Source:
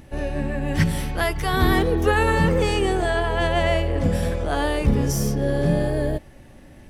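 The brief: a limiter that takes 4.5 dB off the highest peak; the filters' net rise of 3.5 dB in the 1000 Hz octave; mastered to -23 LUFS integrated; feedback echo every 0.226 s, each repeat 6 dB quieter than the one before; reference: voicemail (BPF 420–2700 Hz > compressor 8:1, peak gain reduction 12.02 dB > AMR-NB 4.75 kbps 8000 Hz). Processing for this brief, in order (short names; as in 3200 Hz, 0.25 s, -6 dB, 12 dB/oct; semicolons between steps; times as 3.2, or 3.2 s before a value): bell 1000 Hz +5 dB; limiter -10.5 dBFS; BPF 420–2700 Hz; feedback echo 0.226 s, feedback 50%, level -6 dB; compressor 8:1, threshold -29 dBFS; gain +12 dB; AMR-NB 4.75 kbps 8000 Hz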